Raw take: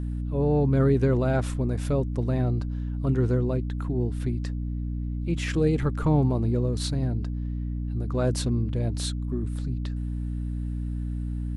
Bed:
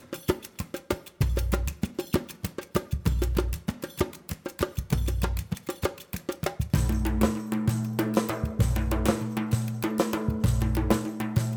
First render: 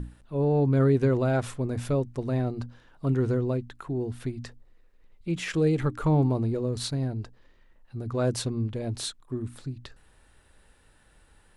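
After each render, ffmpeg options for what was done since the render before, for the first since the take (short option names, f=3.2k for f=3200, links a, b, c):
-af "bandreject=f=60:t=h:w=6,bandreject=f=120:t=h:w=6,bandreject=f=180:t=h:w=6,bandreject=f=240:t=h:w=6,bandreject=f=300:t=h:w=6"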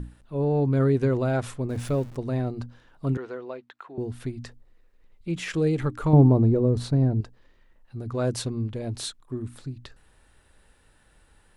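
-filter_complex "[0:a]asettb=1/sr,asplit=3[a][b][c];[a]atrim=end=1.704[d];[b]atrim=start=1.7:end=2.16,asetpts=PTS-STARTPTS,afade=t=in:d=0.004:c=qsin,afade=t=out:st=0.456:d=0.004:c=qsin,aeval=exprs='val(0)+0.5*0.00841*sgn(val(0))':c=same[e];[c]atrim=start=2.156[f];[d][e]acrossfade=d=0.004:c1=hsin:c2=qsin[g];[g][f]acrossfade=d=0.004:c1=qsin:c2=hsin,asettb=1/sr,asplit=3[h][i][j];[h]atrim=end=3.174[k];[i]atrim=start=3.17:end=3.98,asetpts=PTS-STARTPTS,afade=t=in:d=0.004:c=qsin,afade=t=out:st=0.806:d=0.004:c=qsin,highpass=600,lowpass=3.6k[l];[j]atrim=start=3.976[m];[k][l]acrossfade=d=0.004:c1=hsin:c2=qsin[n];[n][m]acrossfade=d=0.004:c1=qsin:c2=hsin,asettb=1/sr,asplit=3[o][p][q];[o]atrim=end=6.134[r];[p]atrim=start=6.13:end=7.21,asetpts=PTS-STARTPTS,afade=t=in:d=0.004:c=qsin,afade=t=out:st=1.076:d=0.004:c=qsin,tiltshelf=f=1.4k:g=8[s];[q]atrim=start=7.206[t];[r][s]acrossfade=d=0.004:c1=hsin:c2=qsin[u];[u][t]acrossfade=d=0.004:c1=qsin:c2=hsin"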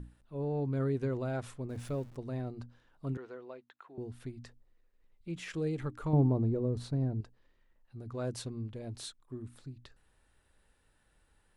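-af "volume=-10.5dB"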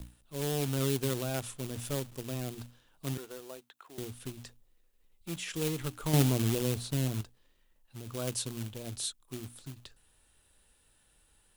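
-filter_complex "[0:a]acrossover=split=120|770|2300[a][b][c][d];[b]acrusher=bits=2:mode=log:mix=0:aa=0.000001[e];[a][e][c][d]amix=inputs=4:normalize=0,aexciter=amount=2.8:drive=3.5:freq=2.7k"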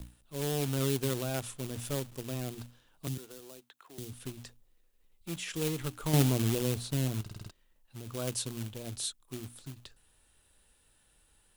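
-filter_complex "[0:a]asettb=1/sr,asplit=3[a][b][c];[a]atrim=end=3.074[d];[b]atrim=start=3.07:end=4.13,asetpts=PTS-STARTPTS,afade=t=in:d=0.004:c=qsin,afade=t=out:st=1.056:d=0.004:c=qsin,acrossover=split=300|3000[e][f][g];[f]acompressor=threshold=-51dB:ratio=6:attack=3.2:release=140:knee=2.83:detection=peak[h];[e][h][g]amix=inputs=3:normalize=0[i];[c]atrim=start=4.126[j];[d][i]acrossfade=d=0.004:c1=hsin:c2=qsin[k];[k][j]acrossfade=d=0.004:c1=qsin:c2=hsin,asplit=7[l][m][n][o][p][q][r];[l]atrim=end=7.262[s];[m]atrim=start=7.208:end=7.262[t];[n]atrim=start=7.208:end=7.262[u];[o]atrim=start=7.208:end=7.262[v];[p]atrim=start=7.208:end=7.262[w];[q]atrim=start=7.208:end=7.262[x];[r]atrim=start=7.508[y];[s][t]acrossfade=d=0.004:c1=hsin:c2=hsin[z];[z][u]acrossfade=d=0.004:c1=hsin:c2=hsin[aa];[aa][v]acrossfade=d=0.004:c1=hsin:c2=hsin[ab];[ab][w]acrossfade=d=0.004:c1=hsin:c2=hsin[ac];[ac][x]acrossfade=d=0.004:c1=hsin:c2=hsin[ad];[ad][y]acrossfade=d=0.004:c1=hsin:c2=hsin"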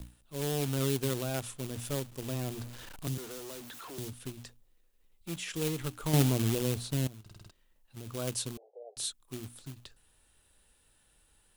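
-filter_complex "[0:a]asettb=1/sr,asplit=3[a][b][c];[a]atrim=end=2.224[d];[b]atrim=start=2.22:end=4.1,asetpts=PTS-STARTPTS,afade=t=in:d=0.004:c=qsin,afade=t=out:st=1.876:d=0.004:c=qsin,aeval=exprs='val(0)+0.5*0.00841*sgn(val(0))':c=same[e];[c]atrim=start=4.096[f];[d][e]acrossfade=d=0.004:c1=hsin:c2=qsin[g];[g][f]acrossfade=d=0.004:c1=qsin:c2=hsin,asettb=1/sr,asplit=3[h][i][j];[h]atrim=end=7.074[k];[i]atrim=start=7.07:end=7.97,asetpts=PTS-STARTPTS,afade=t=in:d=0.004:c=qsin,afade=t=out:st=0.896:d=0.004:c=qsin,acompressor=threshold=-47dB:ratio=6:attack=3.2:release=140:knee=1:detection=peak[l];[j]atrim=start=7.966[m];[k][l]acrossfade=d=0.004:c1=hsin:c2=qsin[n];[n][m]acrossfade=d=0.004:c1=qsin:c2=hsin,asettb=1/sr,asplit=3[o][p][q];[o]atrim=end=8.574[r];[p]atrim=start=8.57:end=8.97,asetpts=PTS-STARTPTS,afade=t=in:d=0.004:c=qsin,afade=t=out:st=0.396:d=0.004:c=qsin,asuperpass=centerf=570:order=12:qfactor=1.5[s];[q]atrim=start=8.966[t];[r][s]acrossfade=d=0.004:c1=hsin:c2=qsin[u];[u][t]acrossfade=d=0.004:c1=qsin:c2=hsin"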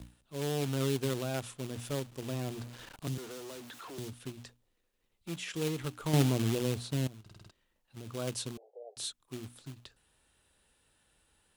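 -af "highpass=f=78:p=1,highshelf=f=8.9k:g=-9.5"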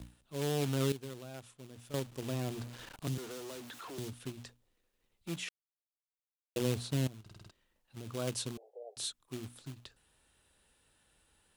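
-filter_complex "[0:a]asplit=5[a][b][c][d][e];[a]atrim=end=0.922[f];[b]atrim=start=0.918:end=1.942,asetpts=PTS-STARTPTS,volume=-12dB[g];[c]atrim=start=1.938:end=5.49,asetpts=PTS-STARTPTS,afade=t=out:st=3.548:d=0.004:c=hsin[h];[d]atrim=start=5.49:end=6.56,asetpts=PTS-STARTPTS,volume=0[i];[e]atrim=start=6.56,asetpts=PTS-STARTPTS,afade=t=in:d=0.004:c=hsin[j];[f][g]acrossfade=d=0.004:c1=hsin:c2=hsin[k];[h][i][j]concat=n=3:v=0:a=1[l];[k][l]acrossfade=d=0.004:c1=hsin:c2=hsin"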